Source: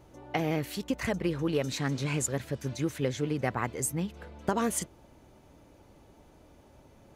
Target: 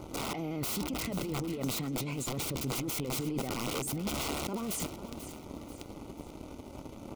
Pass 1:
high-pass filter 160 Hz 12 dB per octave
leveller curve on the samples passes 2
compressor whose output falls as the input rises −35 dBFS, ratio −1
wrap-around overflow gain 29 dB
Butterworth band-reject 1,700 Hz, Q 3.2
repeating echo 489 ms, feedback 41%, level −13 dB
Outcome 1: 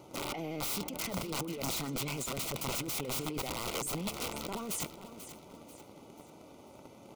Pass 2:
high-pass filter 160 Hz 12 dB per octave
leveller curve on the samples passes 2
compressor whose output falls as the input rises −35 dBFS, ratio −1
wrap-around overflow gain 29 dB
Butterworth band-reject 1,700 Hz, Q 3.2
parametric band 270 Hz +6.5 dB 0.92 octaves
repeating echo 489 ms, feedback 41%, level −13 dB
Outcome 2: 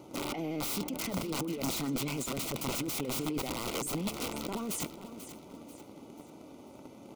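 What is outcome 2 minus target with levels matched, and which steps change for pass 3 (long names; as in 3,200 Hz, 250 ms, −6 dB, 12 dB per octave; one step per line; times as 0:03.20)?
125 Hz band −3.5 dB
remove: high-pass filter 160 Hz 12 dB per octave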